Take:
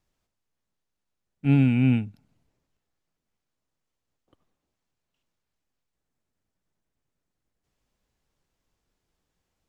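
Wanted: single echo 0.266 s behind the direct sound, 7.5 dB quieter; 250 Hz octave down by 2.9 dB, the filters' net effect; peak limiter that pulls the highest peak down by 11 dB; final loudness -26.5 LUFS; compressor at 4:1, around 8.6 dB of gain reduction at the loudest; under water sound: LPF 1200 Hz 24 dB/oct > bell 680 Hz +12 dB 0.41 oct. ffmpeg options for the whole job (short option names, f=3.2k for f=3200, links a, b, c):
-af "equalizer=f=250:t=o:g=-3.5,acompressor=threshold=-27dB:ratio=4,alimiter=level_in=6.5dB:limit=-24dB:level=0:latency=1,volume=-6.5dB,lowpass=f=1.2k:w=0.5412,lowpass=f=1.2k:w=1.3066,equalizer=f=680:t=o:w=0.41:g=12,aecho=1:1:266:0.422,volume=14dB"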